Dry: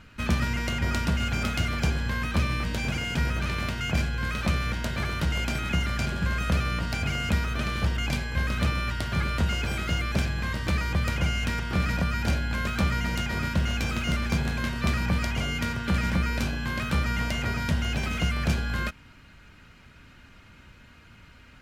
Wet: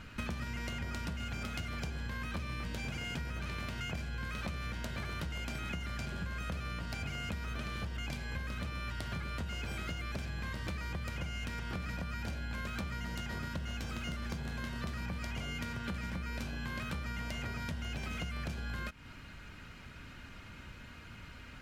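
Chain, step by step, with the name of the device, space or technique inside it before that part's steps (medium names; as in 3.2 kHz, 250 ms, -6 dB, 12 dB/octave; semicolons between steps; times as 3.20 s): serial compression, leveller first (compression 2:1, threshold -27 dBFS, peak gain reduction 5 dB; compression 6:1, threshold -38 dBFS, peak gain reduction 13.5 dB); 12.98–14.99 s: band-stop 2.4 kHz, Q 14; trim +1.5 dB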